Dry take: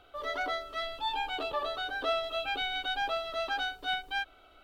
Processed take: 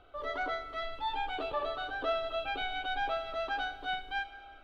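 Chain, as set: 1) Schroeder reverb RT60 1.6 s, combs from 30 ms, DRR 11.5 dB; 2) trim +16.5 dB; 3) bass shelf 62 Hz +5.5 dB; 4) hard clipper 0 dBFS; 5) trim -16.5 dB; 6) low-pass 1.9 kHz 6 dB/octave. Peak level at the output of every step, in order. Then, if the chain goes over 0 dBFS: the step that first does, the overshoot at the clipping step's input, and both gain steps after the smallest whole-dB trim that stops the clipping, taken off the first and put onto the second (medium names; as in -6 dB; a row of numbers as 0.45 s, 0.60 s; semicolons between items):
-19.5 dBFS, -3.0 dBFS, -2.5 dBFS, -2.5 dBFS, -19.0 dBFS, -21.0 dBFS; nothing clips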